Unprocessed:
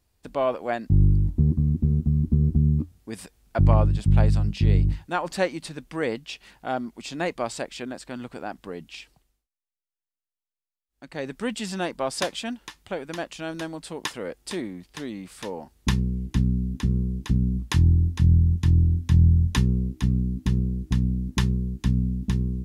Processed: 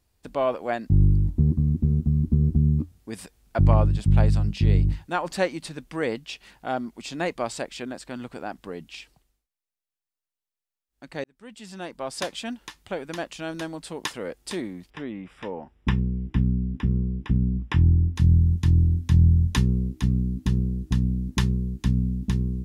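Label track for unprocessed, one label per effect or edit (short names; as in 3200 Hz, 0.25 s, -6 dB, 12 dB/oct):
11.240000	12.670000	fade in
14.900000	18.160000	polynomial smoothing over 25 samples
20.450000	21.030000	notch 2200 Hz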